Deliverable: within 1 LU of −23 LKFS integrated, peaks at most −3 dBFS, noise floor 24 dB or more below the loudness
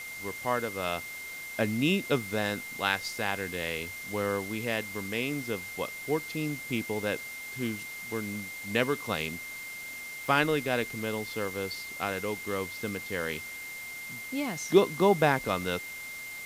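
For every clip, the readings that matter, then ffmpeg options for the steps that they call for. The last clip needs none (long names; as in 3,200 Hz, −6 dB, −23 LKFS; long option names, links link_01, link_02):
interfering tone 2,100 Hz; level of the tone −39 dBFS; background noise floor −41 dBFS; target noise floor −55 dBFS; integrated loudness −31.0 LKFS; sample peak −9.5 dBFS; target loudness −23.0 LKFS
→ -af "bandreject=frequency=2100:width=30"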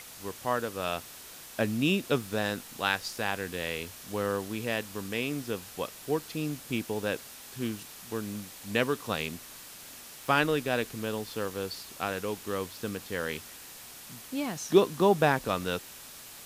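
interfering tone none found; background noise floor −47 dBFS; target noise floor −55 dBFS
→ -af "afftdn=noise_reduction=8:noise_floor=-47"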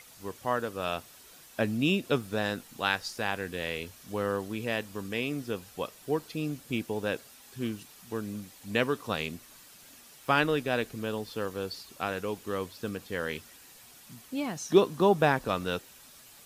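background noise floor −54 dBFS; target noise floor −56 dBFS
→ -af "afftdn=noise_reduction=6:noise_floor=-54"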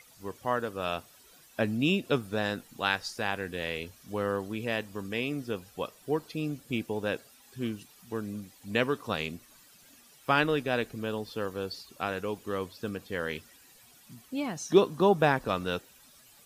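background noise floor −58 dBFS; integrated loudness −31.5 LKFS; sample peak −10.0 dBFS; target loudness −23.0 LKFS
→ -af "volume=8.5dB,alimiter=limit=-3dB:level=0:latency=1"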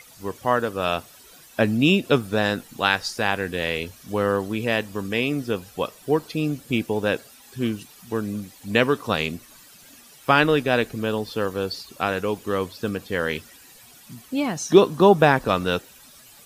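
integrated loudness −23.0 LKFS; sample peak −3.0 dBFS; background noise floor −49 dBFS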